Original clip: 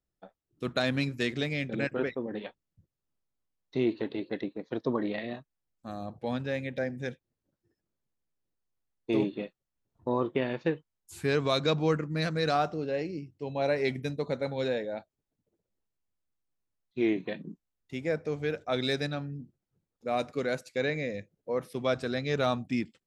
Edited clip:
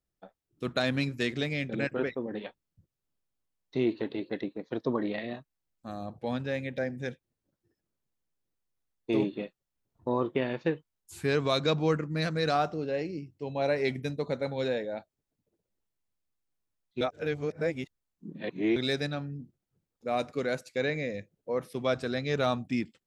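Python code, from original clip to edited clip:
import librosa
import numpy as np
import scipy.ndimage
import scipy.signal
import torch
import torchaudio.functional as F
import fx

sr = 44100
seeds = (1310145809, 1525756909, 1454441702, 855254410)

y = fx.edit(x, sr, fx.reverse_span(start_s=17.01, length_s=1.75), tone=tone)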